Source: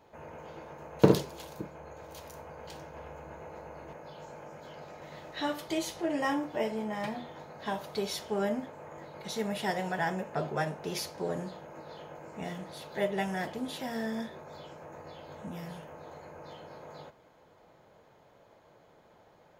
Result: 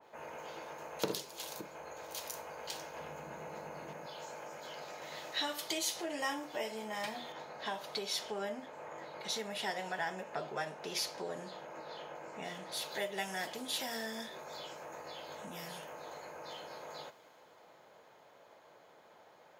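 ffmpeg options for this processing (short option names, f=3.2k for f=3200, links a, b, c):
-filter_complex "[0:a]asettb=1/sr,asplit=3[a][b][c];[a]atrim=end=2.994[d];[b]atrim=start=2.99:end=4.06,asetpts=PTS-STARTPTS,afade=t=in:d=0.004:c=qsin,afade=t=out:st=1.066:d=0.004:c=qsin,equalizer=f=170:w=1.2:g=12[e];[c]atrim=start=4.056[f];[d][e]acrossfade=d=0.004:c1=hsin:c2=qsin[g];[g][f]acrossfade=d=0.004:c1=qsin:c2=hsin,asettb=1/sr,asplit=3[h][i][j];[h]atrim=end=7.324[k];[i]atrim=start=7.32:end=12.72,asetpts=PTS-STARTPTS,afade=t=in:d=0.004:c=qsin,afade=t=out:st=5.396:d=0.004:c=qsin,lowpass=f=3.3k:p=1[l];[j]atrim=start=12.716[m];[k][l]acrossfade=d=0.004:c1=hsin:c2=qsin[n];[n][m]acrossfade=d=0.004:c1=qsin:c2=hsin,acompressor=threshold=-40dB:ratio=2,highpass=f=620:p=1,adynamicequalizer=threshold=0.001:dfrequency=2700:dqfactor=0.7:tfrequency=2700:tqfactor=0.7:attack=5:release=100:ratio=0.375:range=4:mode=boostabove:tftype=highshelf,volume=3dB"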